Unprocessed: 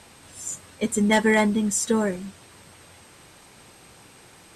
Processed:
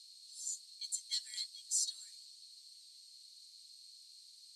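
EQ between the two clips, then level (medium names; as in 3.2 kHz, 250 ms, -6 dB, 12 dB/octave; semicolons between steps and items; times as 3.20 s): ladder band-pass 4.4 kHz, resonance 90%; differentiator; treble shelf 3.4 kHz +6.5 dB; 0.0 dB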